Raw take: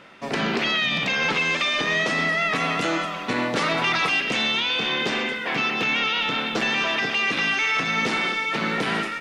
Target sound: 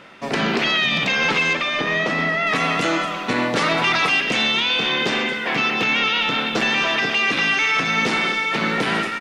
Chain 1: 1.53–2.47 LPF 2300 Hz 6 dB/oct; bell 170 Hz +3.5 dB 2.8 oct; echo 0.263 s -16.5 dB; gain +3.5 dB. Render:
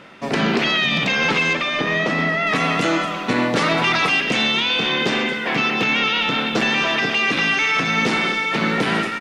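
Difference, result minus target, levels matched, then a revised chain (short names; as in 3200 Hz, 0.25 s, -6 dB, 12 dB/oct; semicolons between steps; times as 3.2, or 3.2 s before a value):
125 Hz band +3.0 dB
1.53–2.47 LPF 2300 Hz 6 dB/oct; echo 0.263 s -16.5 dB; gain +3.5 dB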